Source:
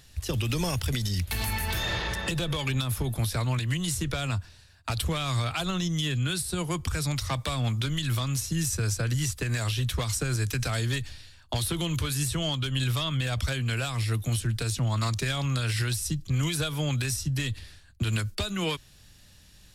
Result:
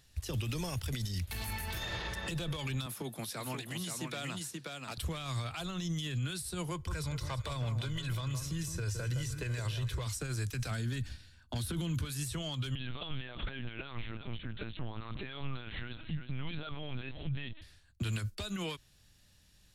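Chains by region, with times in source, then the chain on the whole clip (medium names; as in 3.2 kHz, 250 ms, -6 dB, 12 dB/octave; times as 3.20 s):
2.86–4.98 s: high-pass 170 Hz 24 dB/octave + delay 530 ms -4.5 dB
6.71–10.07 s: treble shelf 5.1 kHz -6 dB + comb 2 ms, depth 43% + echo whose repeats swap between lows and highs 165 ms, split 1.4 kHz, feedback 57%, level -8 dB
10.71–12.05 s: peaking EQ 63 Hz +7.5 dB 1.6 oct + small resonant body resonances 220/1500 Hz, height 10 dB, ringing for 25 ms
12.75–17.62 s: comb 5 ms, depth 55% + feedback delay 356 ms, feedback 18%, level -13 dB + LPC vocoder at 8 kHz pitch kept
whole clip: peak limiter -24.5 dBFS; upward expansion 1.5:1, over -43 dBFS; trim -2.5 dB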